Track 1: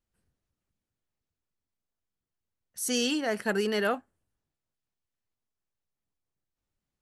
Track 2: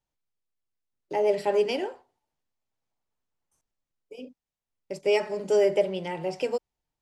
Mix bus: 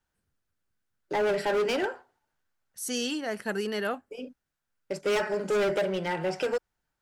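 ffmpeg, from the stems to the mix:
ffmpeg -i stem1.wav -i stem2.wav -filter_complex "[0:a]volume=-3dB[link_01];[1:a]equalizer=frequency=1500:width=2.7:gain=13.5,asoftclip=type=hard:threshold=-25dB,volume=2dB[link_02];[link_01][link_02]amix=inputs=2:normalize=0" out.wav

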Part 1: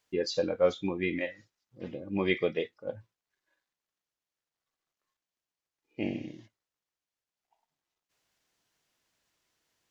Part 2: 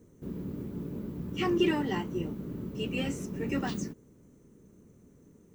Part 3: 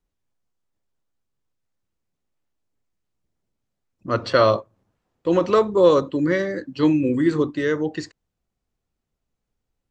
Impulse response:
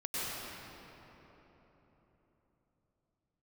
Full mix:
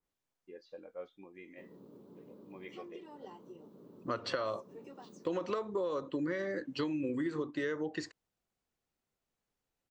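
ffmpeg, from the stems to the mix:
-filter_complex "[0:a]lowpass=2500,equalizer=frequency=110:width=0.96:gain=-10.5,adelay=350,volume=-19dB[link_01];[1:a]highpass=150,acompressor=threshold=-33dB:ratio=12,equalizer=frequency=500:width_type=o:width=1:gain=9,equalizer=frequency=1000:width_type=o:width=1:gain=10,equalizer=frequency=2000:width_type=o:width=1:gain=-8,equalizer=frequency=4000:width_type=o:width=1:gain=8,adelay=1350,volume=-18.5dB[link_02];[2:a]lowshelf=frequency=280:gain=-7,acompressor=threshold=-18dB:ratio=6,adynamicequalizer=threshold=0.00794:dfrequency=2500:dqfactor=0.7:tfrequency=2500:tqfactor=0.7:attack=5:release=100:ratio=0.375:range=2.5:mode=cutabove:tftype=highshelf,volume=-2.5dB[link_03];[link_01][link_02][link_03]amix=inputs=3:normalize=0,lowshelf=frequency=73:gain=-8.5,acompressor=threshold=-32dB:ratio=6"

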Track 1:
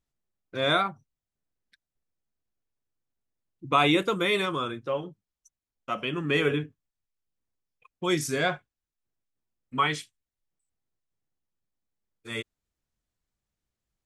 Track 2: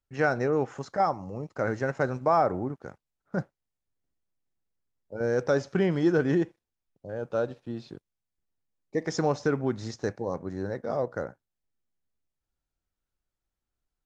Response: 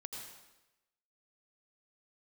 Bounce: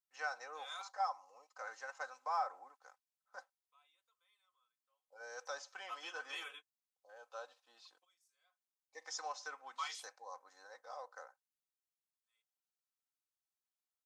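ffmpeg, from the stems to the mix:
-filter_complex "[0:a]dynaudnorm=framelen=290:gausssize=11:maxgain=7dB,volume=-18dB[link_01];[1:a]adynamicequalizer=threshold=0.00224:dfrequency=100:dqfactor=4:tfrequency=100:tqfactor=4:attack=5:release=100:ratio=0.375:range=3.5:mode=boostabove:tftype=bell,volume=-5.5dB,asplit=2[link_02][link_03];[link_03]apad=whole_len=619651[link_04];[link_01][link_04]sidechaingate=range=-33dB:threshold=-51dB:ratio=16:detection=peak[link_05];[link_05][link_02]amix=inputs=2:normalize=0,highpass=frequency=940:width=0.5412,highpass=frequency=940:width=1.3066,equalizer=frequency=1900:width_type=o:width=1.4:gain=-10,aecho=1:1:3.9:0.65"

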